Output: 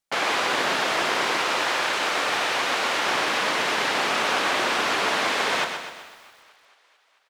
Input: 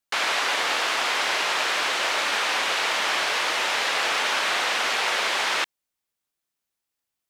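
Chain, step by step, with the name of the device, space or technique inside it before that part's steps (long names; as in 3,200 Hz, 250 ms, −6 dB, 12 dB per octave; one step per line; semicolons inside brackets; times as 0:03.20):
0:01.36–0:03.06: dynamic equaliser 420 Hz, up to −5 dB, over −45 dBFS, Q 1
feedback echo with a high-pass in the loop 220 ms, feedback 70%, high-pass 420 Hz, level −21.5 dB
octave pedal (pitch-shifted copies added −12 semitones 0 dB)
feedback echo at a low word length 126 ms, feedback 55%, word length 8 bits, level −7 dB
level −3 dB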